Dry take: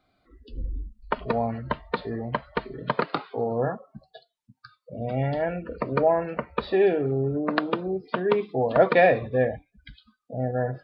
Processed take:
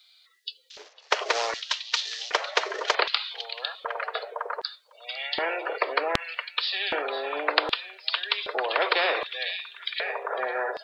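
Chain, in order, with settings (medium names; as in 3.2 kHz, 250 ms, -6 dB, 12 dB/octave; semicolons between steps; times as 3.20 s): 0.70–2.95 s: CVSD coder 32 kbps; steep high-pass 410 Hz 48 dB/octave; repeats whose band climbs or falls 503 ms, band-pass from 3.3 kHz, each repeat -0.7 oct, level -12 dB; LFO high-pass square 0.65 Hz 530–3600 Hz; spectrum-flattening compressor 4:1; trim -1 dB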